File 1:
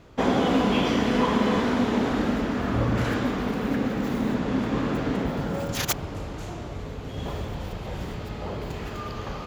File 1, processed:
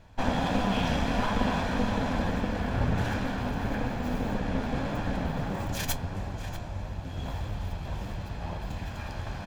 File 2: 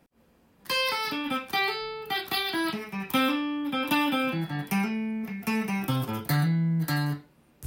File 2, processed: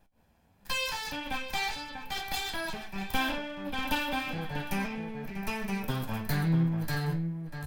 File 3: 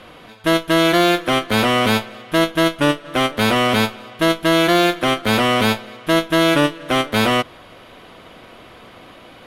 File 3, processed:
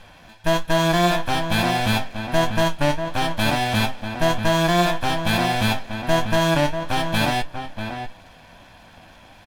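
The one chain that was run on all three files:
minimum comb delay 1.2 ms; low shelf 65 Hz +10 dB; flange 1.6 Hz, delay 9.5 ms, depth 3 ms, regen +61%; outdoor echo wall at 110 m, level -7 dB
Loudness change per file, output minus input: -4.5, -4.5, -4.5 LU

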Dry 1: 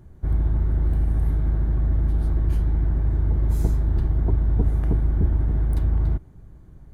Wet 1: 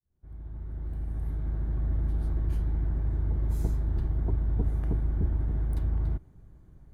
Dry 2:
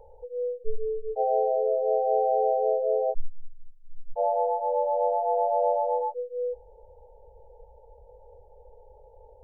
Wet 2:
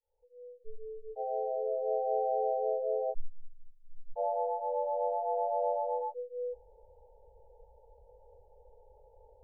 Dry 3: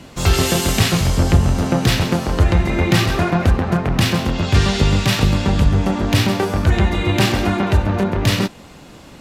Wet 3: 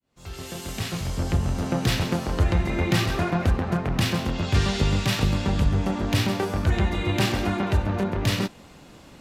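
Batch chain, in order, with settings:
opening faded in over 1.92 s; gain -7 dB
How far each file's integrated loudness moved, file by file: -7.5, -7.0, -7.5 LU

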